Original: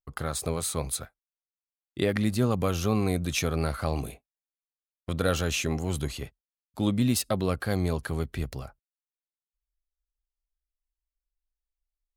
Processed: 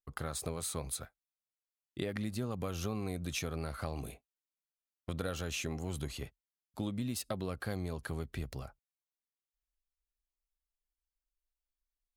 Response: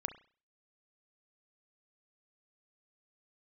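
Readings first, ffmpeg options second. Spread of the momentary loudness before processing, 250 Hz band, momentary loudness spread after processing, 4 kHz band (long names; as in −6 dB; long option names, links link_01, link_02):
13 LU, −11.0 dB, 11 LU, −9.0 dB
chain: -af "acompressor=threshold=-28dB:ratio=6,volume=-5dB"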